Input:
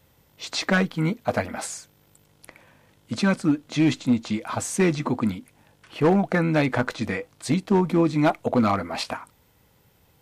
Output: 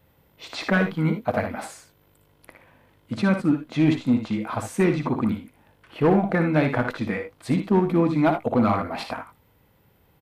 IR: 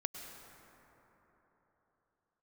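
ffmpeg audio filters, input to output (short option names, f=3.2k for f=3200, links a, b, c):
-filter_complex "[0:a]equalizer=f=6.7k:w=0.82:g=-12.5,asplit=2[a][b];[b]aecho=0:1:58|77:0.376|0.266[c];[a][c]amix=inputs=2:normalize=0"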